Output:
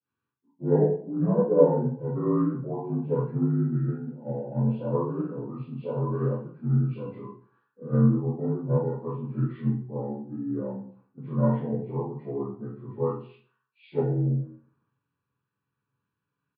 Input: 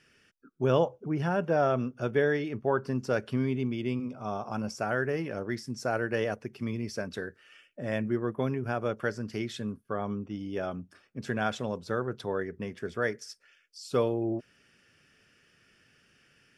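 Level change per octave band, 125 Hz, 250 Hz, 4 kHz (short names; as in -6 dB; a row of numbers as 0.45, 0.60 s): +9.0 dB, +5.0 dB, under -20 dB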